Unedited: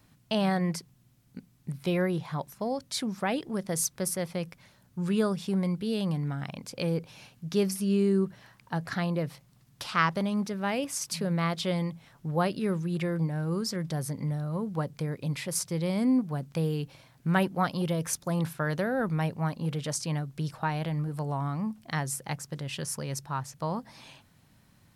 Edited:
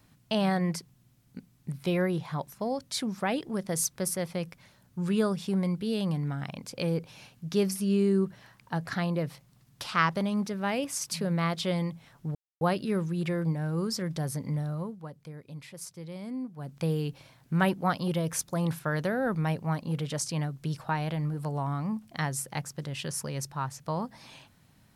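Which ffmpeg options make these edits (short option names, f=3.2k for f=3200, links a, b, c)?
-filter_complex "[0:a]asplit=4[a][b][c][d];[a]atrim=end=12.35,asetpts=PTS-STARTPTS,afade=t=out:st=12.346:d=0.004:c=hsin,apad=pad_dur=0.26[e];[b]atrim=start=12.35:end=14.71,asetpts=PTS-STARTPTS,afade=t=in:d=0.004:c=hsin,afade=t=out:st=2.12:d=0.24:silence=0.266073[f];[c]atrim=start=14.71:end=16.3,asetpts=PTS-STARTPTS,volume=-11.5dB[g];[d]atrim=start=16.3,asetpts=PTS-STARTPTS,afade=t=in:d=0.24:silence=0.266073[h];[e][f][g][h]concat=n=4:v=0:a=1"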